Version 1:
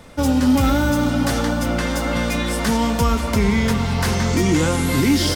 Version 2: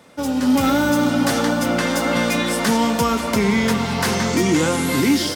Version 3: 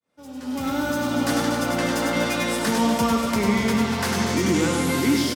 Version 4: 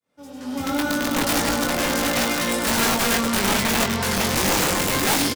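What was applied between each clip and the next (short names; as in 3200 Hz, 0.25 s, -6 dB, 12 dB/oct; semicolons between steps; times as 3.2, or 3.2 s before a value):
HPF 170 Hz 12 dB/oct; AGC gain up to 9 dB; gain -4 dB
opening faded in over 1.17 s; reverse bouncing-ball echo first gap 0.1 s, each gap 1.4×, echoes 5; gain -5.5 dB
wrapped overs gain 16 dB; doubler 21 ms -4.5 dB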